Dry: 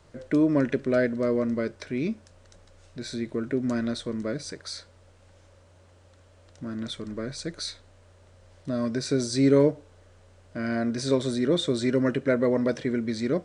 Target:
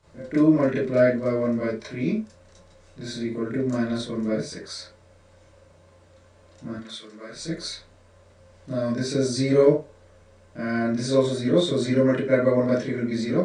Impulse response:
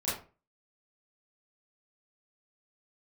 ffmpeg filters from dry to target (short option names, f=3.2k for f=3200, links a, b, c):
-filter_complex "[0:a]asettb=1/sr,asplit=3[a][b][c];[a]atrim=end=6.734[d];[b]atrim=start=6.73:end=7.33,asetpts=PTS-STARTPTS,afade=t=in:d=0.004:c=qsin,afade=t=out:st=0.596:d=0.004:c=qsin,highpass=f=1.3k:p=1[e];[c]atrim=start=7.326[f];[d][e]acrossfade=d=0.004:c1=hsin:c2=qsin[g];[g][f]acrossfade=d=0.004:c1=qsin:c2=hsin[h];[1:a]atrim=start_sample=2205,afade=t=out:st=0.17:d=0.01,atrim=end_sample=7938[i];[h][i]afir=irnorm=-1:irlink=0,volume=-3.5dB"